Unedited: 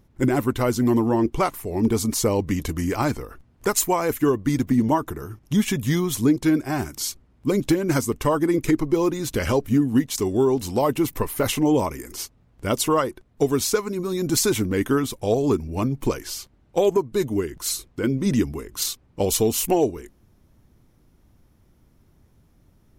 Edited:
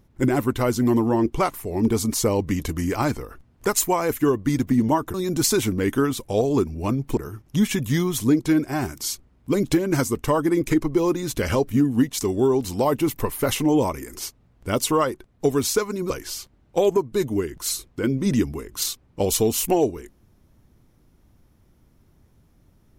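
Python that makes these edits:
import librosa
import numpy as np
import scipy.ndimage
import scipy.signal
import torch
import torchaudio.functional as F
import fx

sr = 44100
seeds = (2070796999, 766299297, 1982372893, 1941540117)

y = fx.edit(x, sr, fx.move(start_s=14.07, length_s=2.03, to_s=5.14), tone=tone)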